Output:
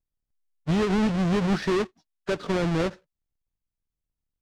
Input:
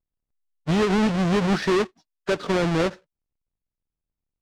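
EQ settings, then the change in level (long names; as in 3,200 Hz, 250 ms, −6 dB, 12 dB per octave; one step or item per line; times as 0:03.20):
low-shelf EQ 180 Hz +6 dB
−4.5 dB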